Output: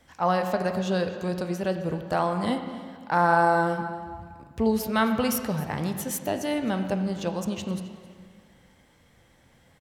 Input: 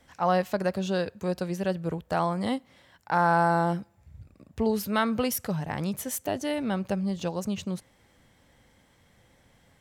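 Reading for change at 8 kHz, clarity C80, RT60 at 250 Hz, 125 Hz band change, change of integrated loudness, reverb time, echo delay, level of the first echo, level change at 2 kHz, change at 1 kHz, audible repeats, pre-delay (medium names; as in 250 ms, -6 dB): +1.0 dB, 8.0 dB, 1.8 s, +0.5 dB, +2.0 dB, 1.9 s, 264 ms, -19.0 dB, +3.0 dB, +2.0 dB, 1, 5 ms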